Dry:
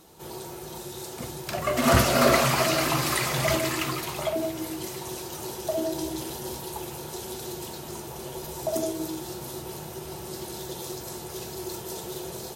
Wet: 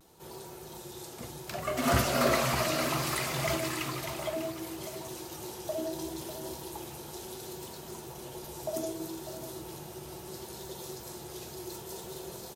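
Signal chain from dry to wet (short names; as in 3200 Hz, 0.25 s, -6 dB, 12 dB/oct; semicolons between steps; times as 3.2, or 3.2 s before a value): vibrato 0.68 Hz 41 cents; on a send: echo 0.597 s -11 dB; on the sum: gain -6.5 dB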